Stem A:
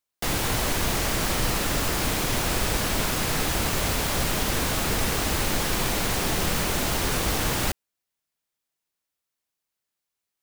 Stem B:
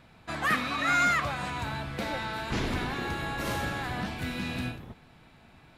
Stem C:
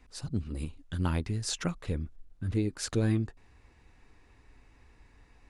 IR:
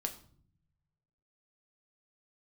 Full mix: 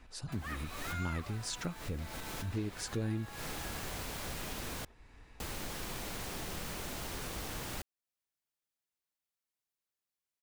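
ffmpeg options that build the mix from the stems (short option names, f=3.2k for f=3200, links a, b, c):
-filter_complex "[0:a]adelay=100,volume=-9dB,asplit=3[a][b][c];[a]atrim=end=4.85,asetpts=PTS-STARTPTS,afade=t=out:st=4.846:d=0.004:c=hsin[d];[b]atrim=start=4.85:end=5.4,asetpts=PTS-STARTPTS,volume=0[e];[c]atrim=start=5.4,asetpts=PTS-STARTPTS,afade=t=in:d=0.004:c=hsin[f];[d][e][f]concat=n=3:v=0:a=1[g];[1:a]highpass=470,volume=-9.5dB[h];[2:a]volume=2dB,asplit=2[i][j];[j]apad=whole_len=463967[k];[g][k]sidechaincompress=threshold=-46dB:ratio=3:attack=16:release=144[l];[l][h][i]amix=inputs=3:normalize=0,acompressor=threshold=-50dB:ratio=1.5"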